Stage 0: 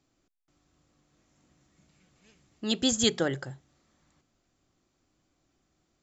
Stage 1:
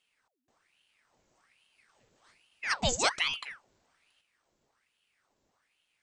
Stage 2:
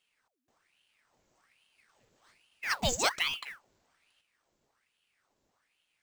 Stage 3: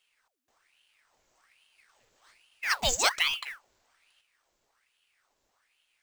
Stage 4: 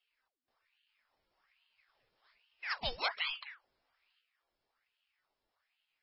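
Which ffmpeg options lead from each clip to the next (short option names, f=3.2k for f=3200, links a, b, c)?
-af "aeval=exprs='val(0)*sin(2*PI*1600*n/s+1600*0.85/1.2*sin(2*PI*1.2*n/s))':c=same"
-af "acrusher=bits=4:mode=log:mix=0:aa=0.000001,volume=-1dB"
-af "equalizer=f=170:t=o:w=2.7:g=-11.5,volume=4.5dB"
-af "volume=-9dB" -ar 16000 -c:a libmp3lame -b:a 16k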